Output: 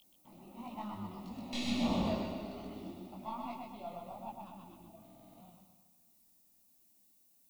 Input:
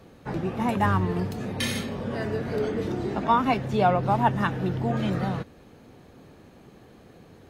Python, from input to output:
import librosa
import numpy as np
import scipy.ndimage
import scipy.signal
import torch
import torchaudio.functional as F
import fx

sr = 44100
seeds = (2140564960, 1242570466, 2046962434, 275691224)

y = fx.tracing_dist(x, sr, depth_ms=0.086)
y = fx.doppler_pass(y, sr, speed_mps=16, closest_m=1.3, pass_at_s=1.9)
y = fx.air_absorb(y, sr, metres=77.0)
y = y + 10.0 ** (-56.0 / 20.0) * np.sin(2.0 * np.pi * 3200.0 * np.arange(len(y)) / sr)
y = fx.peak_eq(y, sr, hz=3100.0, db=7.0, octaves=1.1)
y = fx.fixed_phaser(y, sr, hz=440.0, stages=6)
y = fx.echo_feedback(y, sr, ms=127, feedback_pct=54, wet_db=-3)
y = fx.dmg_noise_colour(y, sr, seeds[0], colour='violet', level_db=-71.0)
y = fx.notch(y, sr, hz=3200.0, q=13.0)
y = fx.buffer_glitch(y, sr, at_s=(5.01, 6.22), block=2048, repeats=7)
y = fx.detune_double(y, sr, cents=50)
y = F.gain(torch.from_numpy(y), 7.5).numpy()